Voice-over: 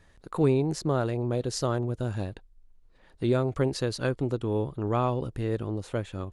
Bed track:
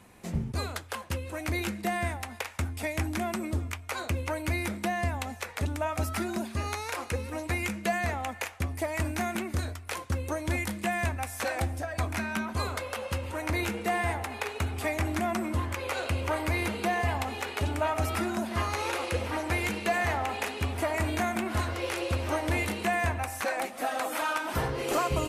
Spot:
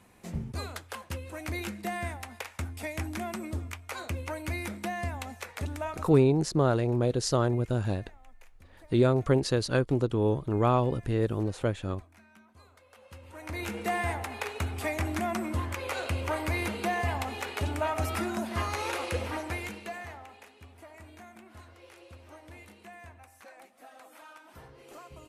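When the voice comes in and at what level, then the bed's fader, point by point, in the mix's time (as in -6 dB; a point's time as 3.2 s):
5.70 s, +2.0 dB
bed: 5.9 s -4 dB
6.27 s -26 dB
12.76 s -26 dB
13.79 s -1.5 dB
19.27 s -1.5 dB
20.48 s -21 dB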